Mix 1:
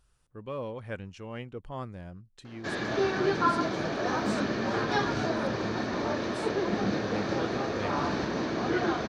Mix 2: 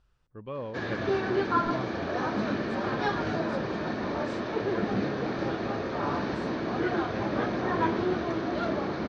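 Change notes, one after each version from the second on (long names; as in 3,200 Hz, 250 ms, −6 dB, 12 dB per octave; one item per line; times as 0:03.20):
background: entry −1.90 s
master: add high-frequency loss of the air 140 metres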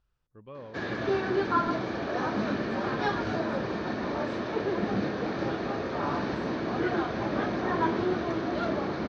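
speech −7.5 dB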